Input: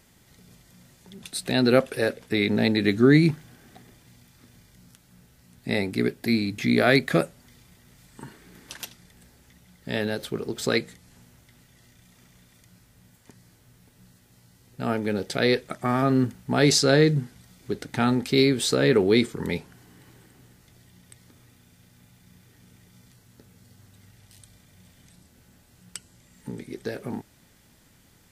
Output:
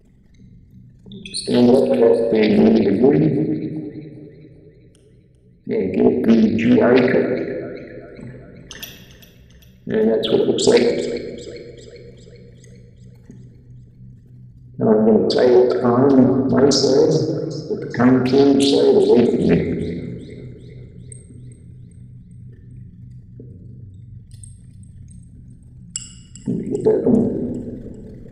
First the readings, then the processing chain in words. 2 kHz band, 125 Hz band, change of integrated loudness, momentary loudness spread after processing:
−1.5 dB, +3.5 dB, +7.0 dB, 18 LU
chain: spectral envelope exaggerated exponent 3
pitch vibrato 3 Hz 79 cents
speech leveller 0.5 s
echo with a time of its own for lows and highs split 420 Hz, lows 171 ms, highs 397 ms, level −15 dB
rectangular room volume 1,300 cubic metres, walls mixed, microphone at 1.5 metres
highs frequency-modulated by the lows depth 0.41 ms
level +6 dB

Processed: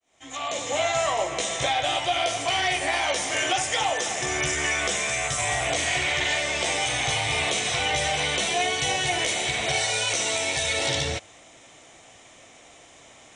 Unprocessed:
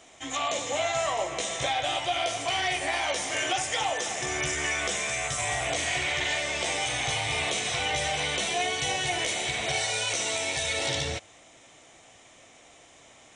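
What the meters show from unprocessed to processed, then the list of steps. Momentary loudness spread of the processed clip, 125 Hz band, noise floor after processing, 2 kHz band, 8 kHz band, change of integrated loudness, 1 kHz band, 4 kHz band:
3 LU, +3.5 dB, −51 dBFS, +3.5 dB, +3.5 dB, +3.5 dB, +3.5 dB, +3.5 dB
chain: fade in at the beginning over 0.80 s
level +3.5 dB

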